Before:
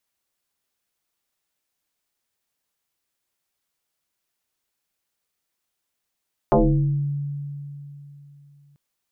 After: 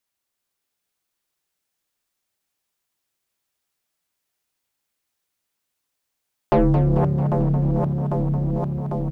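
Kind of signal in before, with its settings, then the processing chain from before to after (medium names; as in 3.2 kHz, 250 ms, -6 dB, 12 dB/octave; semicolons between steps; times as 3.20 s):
FM tone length 2.24 s, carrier 143 Hz, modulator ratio 1.26, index 5, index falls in 0.80 s exponential, decay 3.31 s, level -12 dB
backward echo that repeats 399 ms, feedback 84%, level -7 dB; waveshaping leveller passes 1; on a send: frequency-shifting echo 221 ms, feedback 54%, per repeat +33 Hz, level -9 dB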